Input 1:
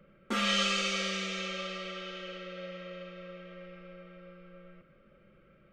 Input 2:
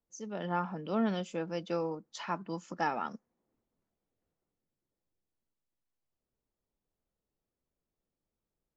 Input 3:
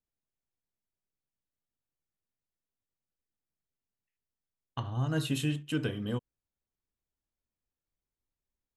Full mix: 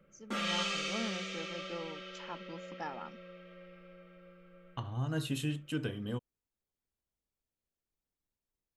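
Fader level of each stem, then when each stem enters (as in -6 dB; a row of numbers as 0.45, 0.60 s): -5.5, -9.5, -4.0 dB; 0.00, 0.00, 0.00 s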